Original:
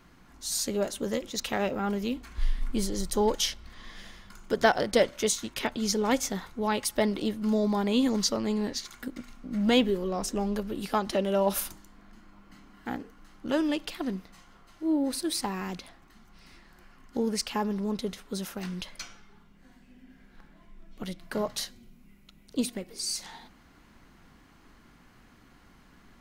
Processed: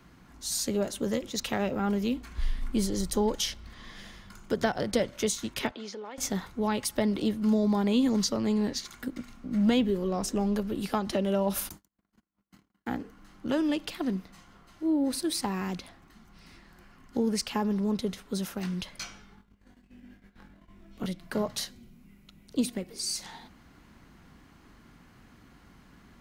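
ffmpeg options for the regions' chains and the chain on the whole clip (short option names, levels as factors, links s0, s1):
-filter_complex "[0:a]asettb=1/sr,asplit=3[s0][s1][s2];[s0]atrim=end=5.714[s3];[s1]atrim=start=5.71:end=6.18,asetpts=PTS-STARTPTS,afade=t=in:d=0.004:c=qsin,afade=t=out:st=0.466:d=0.004:c=qsin,highpass=440,lowpass=3400,acompressor=threshold=0.0141:ratio=12:attack=3.2:release=140:knee=1:detection=peak[s4];[s2]atrim=start=6.176[s5];[s3][s4]acrossfade=d=0.004:c1=hsin:c2=qsin[s6];[s6][s5]acrossfade=d=0.004:c1=qsin:c2=hsin,asettb=1/sr,asplit=3[s7][s8][s9];[s7]atrim=end=11.694[s10];[s8]atrim=start=11.69:end=12.88,asetpts=PTS-STARTPTS,afade=t=in:d=0.004:c=qsin,afade=t=out:st=1.186:d=0.004:c=qsin,highpass=44,agate=range=0.0112:threshold=0.00251:ratio=16:release=100:detection=peak,highshelf=f=11000:g=9[s11];[s9]atrim=start=12.876[s12];[s10][s11]acrossfade=d=0.004:c1=hsin:c2=qsin[s13];[s13][s12]acrossfade=d=0.004:c1=qsin:c2=hsin,asettb=1/sr,asplit=3[s14][s15][s16];[s14]atrim=end=18.994[s17];[s15]atrim=start=18.99:end=21.06,asetpts=PTS-STARTPTS,afade=t=in:d=0.004:c=qsin,afade=t=out:st=2.066:d=0.004:c=qsin,agate=range=0.2:threshold=0.00178:ratio=16:release=100:detection=peak,asplit=2[s18][s19];[s19]adelay=21,volume=0.794[s20];[s18][s20]amix=inputs=2:normalize=0,atrim=end_sample=91287[s21];[s16]atrim=start=21.056[s22];[s17][s21]acrossfade=d=0.004:c1=hsin:c2=qsin[s23];[s23][s22]acrossfade=d=0.004:c1=qsin:c2=hsin,highpass=f=88:p=1,lowshelf=f=170:g=9,acrossover=split=230[s24][s25];[s25]acompressor=threshold=0.0501:ratio=3[s26];[s24][s26]amix=inputs=2:normalize=0"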